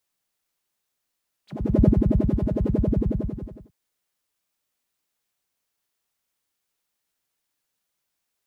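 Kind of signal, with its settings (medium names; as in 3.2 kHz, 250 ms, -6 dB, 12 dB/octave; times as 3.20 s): synth patch with filter wobble G#3, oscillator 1 triangle, interval 0 st, oscillator 2 level -7 dB, noise -9 dB, filter bandpass, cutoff 140 Hz, Q 6.8, filter envelope 3.5 oct, filter decay 0.12 s, filter sustain 5%, attack 416 ms, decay 0.05 s, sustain -5.5 dB, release 1.04 s, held 1.20 s, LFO 11 Hz, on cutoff 1.9 oct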